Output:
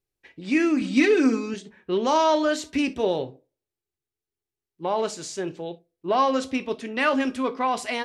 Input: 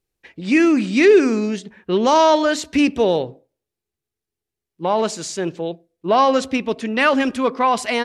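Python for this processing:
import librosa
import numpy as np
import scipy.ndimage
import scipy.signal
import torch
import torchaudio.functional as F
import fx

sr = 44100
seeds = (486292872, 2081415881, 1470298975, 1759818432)

y = fx.comb(x, sr, ms=3.9, depth=0.82, at=(0.81, 1.54))
y = fx.rev_gated(y, sr, seeds[0], gate_ms=90, shape='falling', drr_db=9.5)
y = F.gain(torch.from_numpy(y), -7.0).numpy()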